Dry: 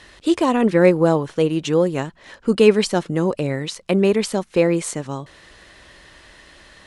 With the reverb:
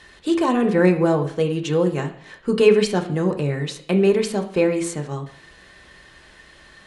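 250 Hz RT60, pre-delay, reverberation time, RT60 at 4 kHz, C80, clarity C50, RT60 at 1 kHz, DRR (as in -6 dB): 0.55 s, 3 ms, 0.55 s, 0.55 s, 15.0 dB, 12.0 dB, 0.55 s, 2.0 dB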